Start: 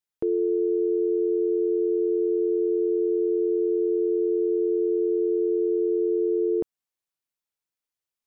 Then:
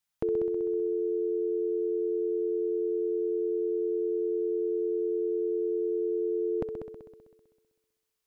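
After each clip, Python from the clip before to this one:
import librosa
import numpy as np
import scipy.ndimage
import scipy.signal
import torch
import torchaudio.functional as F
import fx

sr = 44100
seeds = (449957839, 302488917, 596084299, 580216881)

y = fx.peak_eq(x, sr, hz=370.0, db=-13.0, octaves=0.69)
y = fx.echo_heads(y, sr, ms=64, heads='all three', feedback_pct=53, wet_db=-12)
y = y * librosa.db_to_amplitude(5.5)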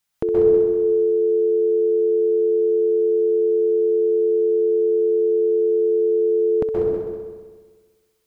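y = fx.rev_plate(x, sr, seeds[0], rt60_s=1.1, hf_ratio=0.55, predelay_ms=115, drr_db=-3.5)
y = y * librosa.db_to_amplitude(7.0)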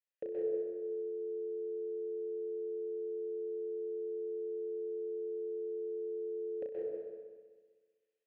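y = fx.vowel_filter(x, sr, vowel='e')
y = fx.doubler(y, sr, ms=35.0, db=-4.5)
y = y * librosa.db_to_amplitude(-7.5)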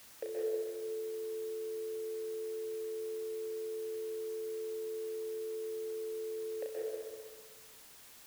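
y = scipy.signal.sosfilt(scipy.signal.butter(2, 700.0, 'highpass', fs=sr, output='sos'), x)
y = fx.dmg_noise_colour(y, sr, seeds[1], colour='white', level_db=-64.0)
y = y * librosa.db_to_amplitude(8.0)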